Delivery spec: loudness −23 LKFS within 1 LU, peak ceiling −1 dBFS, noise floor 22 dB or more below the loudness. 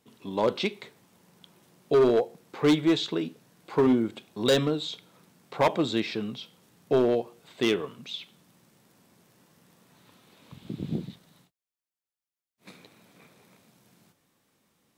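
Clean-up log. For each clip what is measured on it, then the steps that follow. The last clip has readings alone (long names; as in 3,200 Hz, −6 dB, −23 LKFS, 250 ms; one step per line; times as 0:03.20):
share of clipped samples 0.7%; peaks flattened at −16.0 dBFS; integrated loudness −27.0 LKFS; sample peak −16.0 dBFS; target loudness −23.0 LKFS
→ clipped peaks rebuilt −16 dBFS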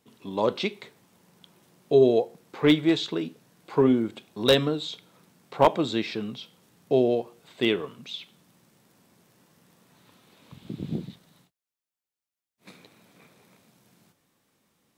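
share of clipped samples 0.0%; integrated loudness −25.0 LKFS; sample peak −7.0 dBFS; target loudness −23.0 LKFS
→ level +2 dB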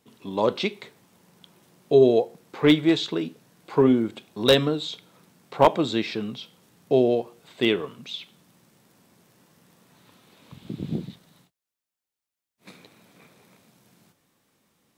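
integrated loudness −23.0 LKFS; sample peak −5.0 dBFS; background noise floor −89 dBFS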